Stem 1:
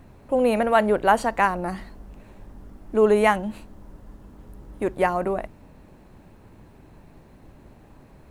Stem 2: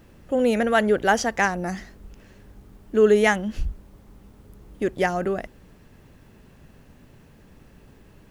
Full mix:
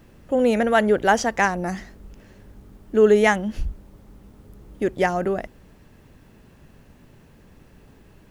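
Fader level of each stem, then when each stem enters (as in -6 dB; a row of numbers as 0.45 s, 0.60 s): -13.0 dB, 0.0 dB; 0.00 s, 0.00 s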